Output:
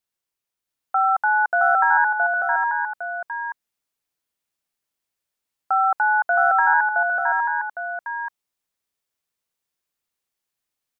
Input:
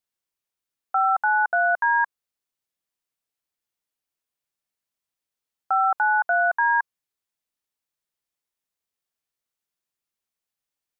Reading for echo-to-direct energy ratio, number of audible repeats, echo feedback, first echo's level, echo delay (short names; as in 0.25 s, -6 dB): -1.0 dB, 3, no steady repeat, -3.5 dB, 0.668 s